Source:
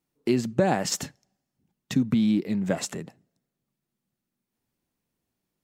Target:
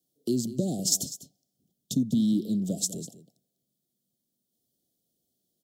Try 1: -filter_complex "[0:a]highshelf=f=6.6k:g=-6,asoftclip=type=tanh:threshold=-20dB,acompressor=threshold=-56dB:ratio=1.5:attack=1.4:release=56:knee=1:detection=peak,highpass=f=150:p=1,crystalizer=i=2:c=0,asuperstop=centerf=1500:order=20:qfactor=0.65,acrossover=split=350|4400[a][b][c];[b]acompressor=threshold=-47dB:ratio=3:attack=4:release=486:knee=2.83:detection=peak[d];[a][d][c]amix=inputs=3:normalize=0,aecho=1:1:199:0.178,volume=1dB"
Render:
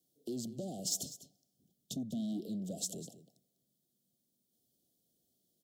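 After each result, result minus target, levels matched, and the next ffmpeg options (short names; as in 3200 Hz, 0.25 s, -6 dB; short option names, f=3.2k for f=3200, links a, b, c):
compressor: peak gain reduction +12 dB; soft clip: distortion +13 dB
-filter_complex "[0:a]highshelf=f=6.6k:g=-6,asoftclip=type=tanh:threshold=-20dB,highpass=f=150:p=1,crystalizer=i=2:c=0,asuperstop=centerf=1500:order=20:qfactor=0.65,acrossover=split=350|4400[a][b][c];[b]acompressor=threshold=-47dB:ratio=3:attack=4:release=486:knee=2.83:detection=peak[d];[a][d][c]amix=inputs=3:normalize=0,aecho=1:1:199:0.178,volume=1dB"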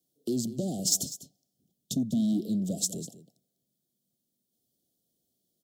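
soft clip: distortion +13 dB
-filter_complex "[0:a]highshelf=f=6.6k:g=-6,asoftclip=type=tanh:threshold=-10dB,highpass=f=150:p=1,crystalizer=i=2:c=0,asuperstop=centerf=1500:order=20:qfactor=0.65,acrossover=split=350|4400[a][b][c];[b]acompressor=threshold=-47dB:ratio=3:attack=4:release=486:knee=2.83:detection=peak[d];[a][d][c]amix=inputs=3:normalize=0,aecho=1:1:199:0.178,volume=1dB"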